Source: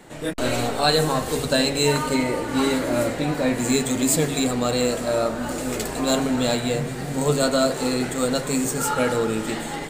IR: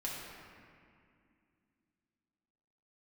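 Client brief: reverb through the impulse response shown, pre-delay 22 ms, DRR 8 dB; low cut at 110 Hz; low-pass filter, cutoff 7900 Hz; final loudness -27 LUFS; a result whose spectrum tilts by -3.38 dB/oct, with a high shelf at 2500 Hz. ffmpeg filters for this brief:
-filter_complex "[0:a]highpass=110,lowpass=7.9k,highshelf=f=2.5k:g=5.5,asplit=2[a][b];[1:a]atrim=start_sample=2205,adelay=22[c];[b][c]afir=irnorm=-1:irlink=0,volume=-10dB[d];[a][d]amix=inputs=2:normalize=0,volume=-6dB"

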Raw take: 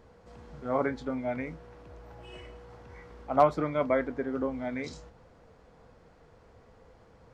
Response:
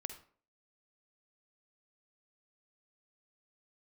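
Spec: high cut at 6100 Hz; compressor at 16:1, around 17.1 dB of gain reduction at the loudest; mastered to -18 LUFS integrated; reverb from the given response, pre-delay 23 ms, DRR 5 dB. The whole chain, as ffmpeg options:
-filter_complex "[0:a]lowpass=6.1k,acompressor=threshold=-32dB:ratio=16,asplit=2[a][b];[1:a]atrim=start_sample=2205,adelay=23[c];[b][c]afir=irnorm=-1:irlink=0,volume=-3dB[d];[a][d]amix=inputs=2:normalize=0,volume=20.5dB"

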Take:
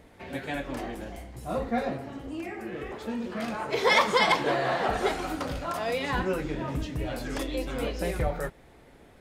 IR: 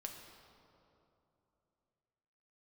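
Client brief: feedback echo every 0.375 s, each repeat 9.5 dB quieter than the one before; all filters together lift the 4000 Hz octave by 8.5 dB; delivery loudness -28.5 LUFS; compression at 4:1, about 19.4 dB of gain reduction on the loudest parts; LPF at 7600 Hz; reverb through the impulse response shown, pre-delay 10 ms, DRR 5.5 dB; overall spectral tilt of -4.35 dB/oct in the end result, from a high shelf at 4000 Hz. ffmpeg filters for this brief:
-filter_complex "[0:a]lowpass=7.6k,highshelf=f=4k:g=4.5,equalizer=f=4k:t=o:g=8.5,acompressor=threshold=-39dB:ratio=4,aecho=1:1:375|750|1125|1500:0.335|0.111|0.0365|0.012,asplit=2[a][b];[1:a]atrim=start_sample=2205,adelay=10[c];[b][c]afir=irnorm=-1:irlink=0,volume=-2.5dB[d];[a][d]amix=inputs=2:normalize=0,volume=10.5dB"

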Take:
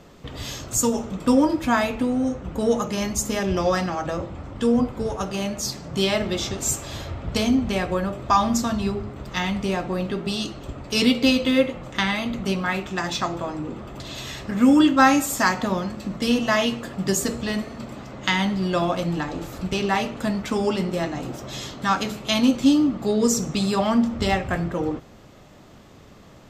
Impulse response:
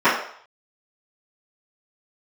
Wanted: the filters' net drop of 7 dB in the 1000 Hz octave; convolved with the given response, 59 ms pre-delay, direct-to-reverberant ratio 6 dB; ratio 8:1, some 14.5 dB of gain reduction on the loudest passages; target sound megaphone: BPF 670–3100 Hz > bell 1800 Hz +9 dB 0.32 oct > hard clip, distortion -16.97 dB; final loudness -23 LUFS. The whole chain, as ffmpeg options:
-filter_complex "[0:a]equalizer=f=1k:t=o:g=-8.5,acompressor=threshold=-28dB:ratio=8,asplit=2[a][b];[1:a]atrim=start_sample=2205,adelay=59[c];[b][c]afir=irnorm=-1:irlink=0,volume=-30dB[d];[a][d]amix=inputs=2:normalize=0,highpass=670,lowpass=3.1k,equalizer=f=1.8k:t=o:w=0.32:g=9,asoftclip=type=hard:threshold=-25.5dB,volume=14dB"

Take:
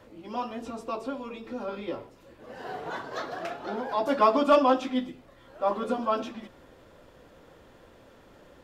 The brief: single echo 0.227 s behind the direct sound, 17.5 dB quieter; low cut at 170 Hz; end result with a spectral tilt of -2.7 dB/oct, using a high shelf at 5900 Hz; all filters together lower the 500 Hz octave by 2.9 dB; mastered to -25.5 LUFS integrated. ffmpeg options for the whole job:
-af "highpass=170,equalizer=f=500:t=o:g=-3.5,highshelf=f=5.9k:g=-7,aecho=1:1:227:0.133,volume=5dB"

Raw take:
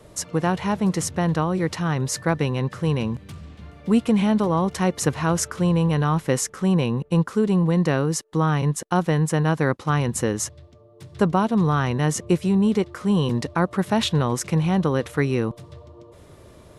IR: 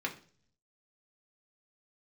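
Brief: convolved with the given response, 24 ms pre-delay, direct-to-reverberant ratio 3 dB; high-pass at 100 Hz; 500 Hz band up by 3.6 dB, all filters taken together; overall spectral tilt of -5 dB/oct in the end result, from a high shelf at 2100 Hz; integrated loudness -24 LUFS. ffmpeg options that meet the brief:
-filter_complex "[0:a]highpass=100,equalizer=f=500:t=o:g=4,highshelf=f=2.1k:g=6.5,asplit=2[a][b];[1:a]atrim=start_sample=2205,adelay=24[c];[b][c]afir=irnorm=-1:irlink=0,volume=-7.5dB[d];[a][d]amix=inputs=2:normalize=0,volume=-5dB"

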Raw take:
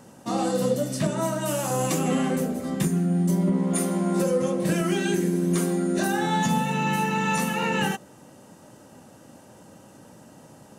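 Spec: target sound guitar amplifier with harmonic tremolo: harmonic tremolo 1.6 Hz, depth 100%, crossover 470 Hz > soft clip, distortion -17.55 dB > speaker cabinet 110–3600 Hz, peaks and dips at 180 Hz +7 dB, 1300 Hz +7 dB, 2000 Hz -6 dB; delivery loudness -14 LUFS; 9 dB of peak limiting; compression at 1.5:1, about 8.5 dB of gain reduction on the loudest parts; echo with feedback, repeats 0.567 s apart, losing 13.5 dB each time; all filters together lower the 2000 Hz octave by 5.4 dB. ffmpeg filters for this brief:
-filter_complex "[0:a]equalizer=f=2k:t=o:g=-6.5,acompressor=threshold=-44dB:ratio=1.5,alimiter=level_in=6.5dB:limit=-24dB:level=0:latency=1,volume=-6.5dB,aecho=1:1:567|1134:0.211|0.0444,acrossover=split=470[a][b];[a]aeval=exprs='val(0)*(1-1/2+1/2*cos(2*PI*1.6*n/s))':c=same[c];[b]aeval=exprs='val(0)*(1-1/2-1/2*cos(2*PI*1.6*n/s))':c=same[d];[c][d]amix=inputs=2:normalize=0,asoftclip=threshold=-36dB,highpass=110,equalizer=f=180:t=q:w=4:g=7,equalizer=f=1.3k:t=q:w=4:g=7,equalizer=f=2k:t=q:w=4:g=-6,lowpass=f=3.6k:w=0.5412,lowpass=f=3.6k:w=1.3066,volume=28.5dB"

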